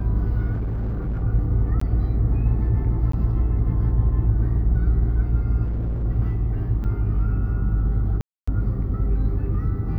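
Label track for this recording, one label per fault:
0.520000	1.240000	clipped -22 dBFS
1.800000	1.810000	gap 14 ms
3.120000	3.130000	gap 14 ms
5.630000	6.060000	clipped -21.5 dBFS
6.840000	6.850000	gap 7.1 ms
8.210000	8.470000	gap 0.265 s

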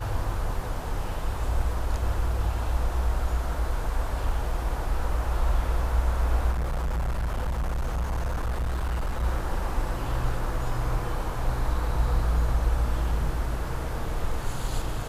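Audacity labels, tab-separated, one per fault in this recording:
6.510000	9.240000	clipped -24 dBFS

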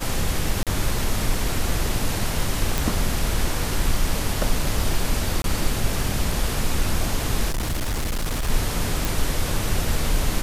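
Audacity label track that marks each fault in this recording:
0.630000	0.670000	gap 37 ms
2.780000	2.780000	pop
5.420000	5.440000	gap 22 ms
7.480000	8.500000	clipped -21 dBFS
9.050000	9.050000	pop

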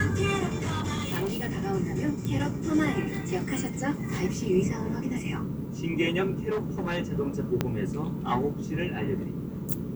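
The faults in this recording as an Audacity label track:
0.590000	1.610000	clipped -25.5 dBFS
2.250000	2.250000	pop
6.490000	6.980000	clipped -25 dBFS
7.610000	7.610000	pop -11 dBFS

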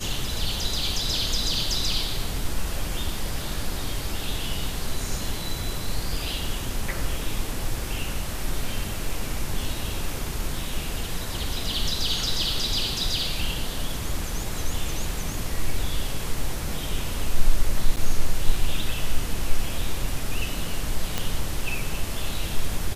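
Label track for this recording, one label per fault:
17.960000	17.970000	gap 8.9 ms
21.180000	21.180000	pop

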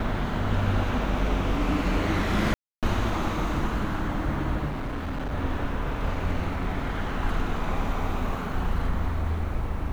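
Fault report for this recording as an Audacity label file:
2.540000	2.830000	gap 0.287 s
4.670000	5.330000	clipped -27 dBFS

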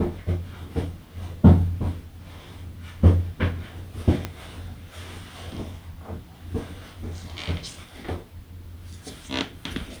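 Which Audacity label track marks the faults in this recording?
4.250000	4.250000	pop -13 dBFS

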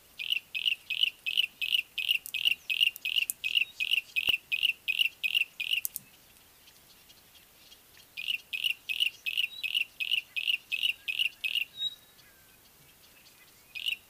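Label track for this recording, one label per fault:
4.290000	4.290000	pop -17 dBFS
9.050000	9.050000	gap 2.1 ms

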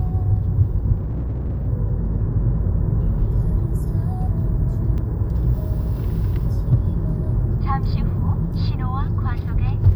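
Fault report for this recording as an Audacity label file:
0.950000	1.680000	clipped -20.5 dBFS
4.980000	4.980000	gap 2.6 ms

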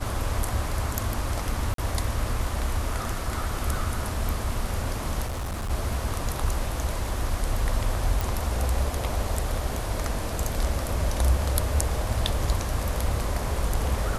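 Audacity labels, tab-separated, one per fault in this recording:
1.740000	1.780000	gap 43 ms
5.260000	5.710000	clipped -27.5 dBFS
8.210000	8.210000	pop

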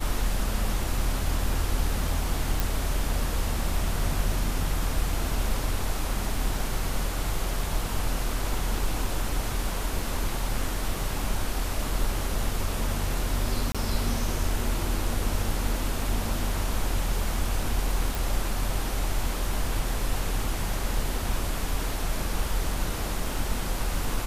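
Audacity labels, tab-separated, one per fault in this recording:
2.600000	2.600000	pop
13.720000	13.750000	gap 26 ms
18.150000	18.150000	pop

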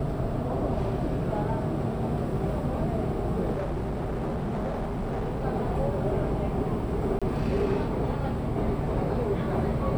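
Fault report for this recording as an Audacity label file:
3.520000	5.450000	clipped -26.5 dBFS
7.190000	7.220000	gap 26 ms

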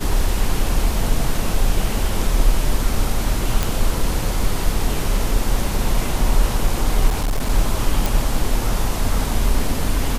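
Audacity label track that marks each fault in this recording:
3.630000	3.630000	pop
7.080000	7.500000	clipped -15.5 dBFS
8.060000	8.060000	pop

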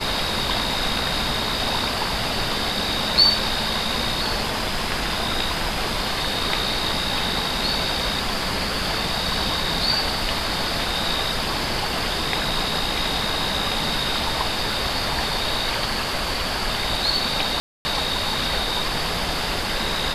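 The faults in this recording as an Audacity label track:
17.600000	17.850000	gap 0.25 s

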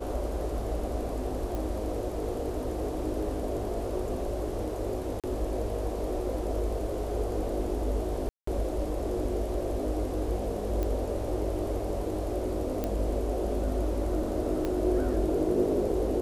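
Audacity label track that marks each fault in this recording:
1.550000	1.550000	pop
5.200000	5.240000	gap 37 ms
8.290000	8.470000	gap 0.184 s
10.830000	10.830000	pop -19 dBFS
12.840000	12.840000	pop -17 dBFS
14.650000	14.650000	pop -18 dBFS

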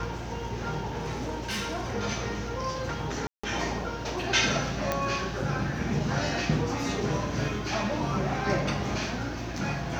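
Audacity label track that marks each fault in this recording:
0.970000	1.950000	clipped -28 dBFS
3.270000	3.440000	gap 0.165 s
4.920000	4.920000	pop -11 dBFS

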